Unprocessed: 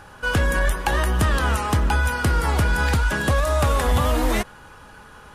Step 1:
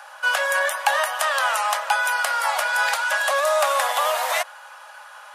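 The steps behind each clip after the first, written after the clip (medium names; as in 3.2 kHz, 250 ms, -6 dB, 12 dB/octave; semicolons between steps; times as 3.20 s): steep high-pass 550 Hz 96 dB/octave; trim +4 dB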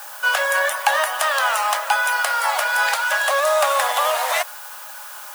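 added noise blue -40 dBFS; trim +2 dB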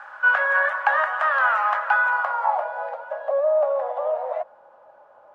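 low-pass sweep 1.5 kHz -> 560 Hz, 1.94–2.93 s; trim -5.5 dB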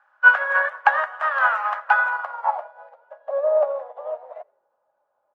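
frequency-shifting echo 84 ms, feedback 46%, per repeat -40 Hz, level -18 dB; upward expansion 2.5:1, over -33 dBFS; trim +7 dB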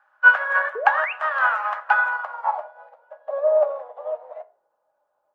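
painted sound rise, 0.75–1.13 s, 410–2900 Hz -27 dBFS; on a send at -11.5 dB: reverberation RT60 0.35 s, pre-delay 3 ms; on the sum: trim -1 dB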